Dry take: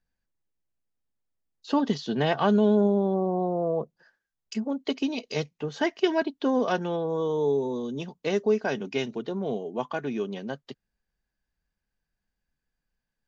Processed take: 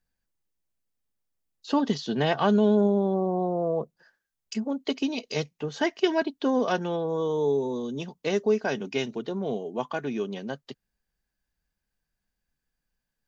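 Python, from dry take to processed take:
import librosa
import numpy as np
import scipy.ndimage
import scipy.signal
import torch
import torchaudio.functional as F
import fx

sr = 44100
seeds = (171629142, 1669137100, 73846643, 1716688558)

y = fx.high_shelf(x, sr, hz=5600.0, db=5.0)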